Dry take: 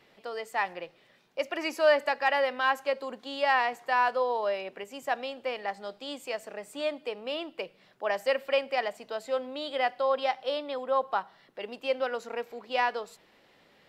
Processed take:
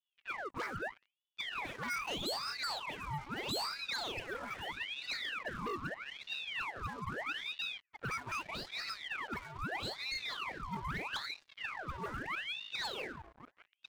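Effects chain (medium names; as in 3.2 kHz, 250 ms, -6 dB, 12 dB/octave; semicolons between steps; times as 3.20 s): power-law waveshaper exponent 0.7; chord resonator G#2 sus4, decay 0.44 s; auto-wah 200–1800 Hz, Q 12, up, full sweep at -35 dBFS; on a send: delay 1099 ms -20 dB; on the sum: waveshaping leveller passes 5; reverse; upward compressor, threshold -55 dBFS; reverse; ring modulator with a swept carrier 1.8 kHz, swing 80%, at 0.79 Hz; trim +3.5 dB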